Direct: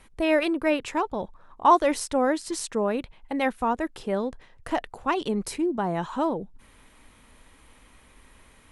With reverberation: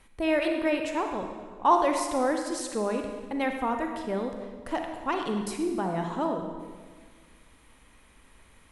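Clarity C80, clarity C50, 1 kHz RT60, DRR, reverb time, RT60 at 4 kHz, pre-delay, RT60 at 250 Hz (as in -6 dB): 6.5 dB, 4.5 dB, 1.5 s, 3.5 dB, 1.6 s, 1.3 s, 34 ms, 1.8 s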